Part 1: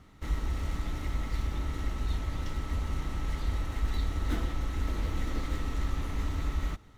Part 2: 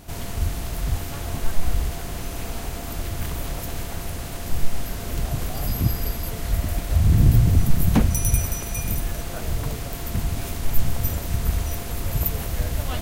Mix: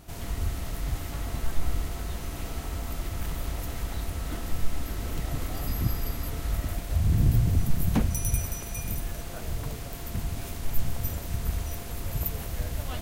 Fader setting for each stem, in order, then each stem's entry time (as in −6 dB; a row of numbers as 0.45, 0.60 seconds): −4.0, −6.5 decibels; 0.00, 0.00 seconds